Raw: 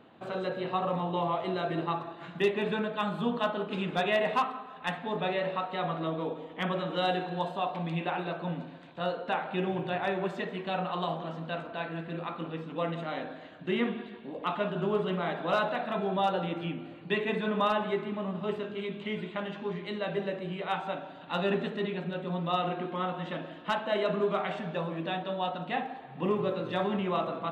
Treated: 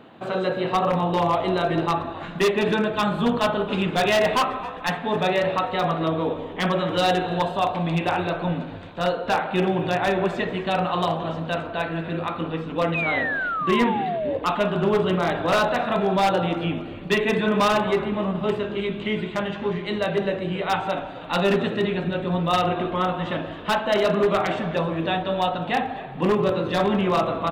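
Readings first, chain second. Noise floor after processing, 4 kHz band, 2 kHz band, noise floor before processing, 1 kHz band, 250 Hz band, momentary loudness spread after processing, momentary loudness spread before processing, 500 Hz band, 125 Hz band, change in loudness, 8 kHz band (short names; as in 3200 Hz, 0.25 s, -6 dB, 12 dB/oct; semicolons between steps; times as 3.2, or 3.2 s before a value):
-35 dBFS, +9.0 dB, +9.5 dB, -47 dBFS, +8.5 dB, +9.0 dB, 7 LU, 8 LU, +8.5 dB, +9.0 dB, +9.0 dB, n/a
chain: frequency-shifting echo 0.266 s, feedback 46%, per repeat -70 Hz, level -17 dB; wavefolder -22 dBFS; painted sound fall, 12.94–14.39, 520–2600 Hz -35 dBFS; gain +9 dB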